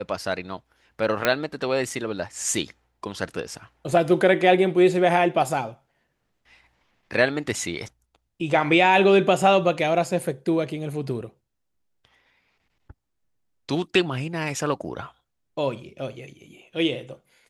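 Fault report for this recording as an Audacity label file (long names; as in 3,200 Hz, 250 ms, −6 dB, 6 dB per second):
1.250000	1.250000	click −5 dBFS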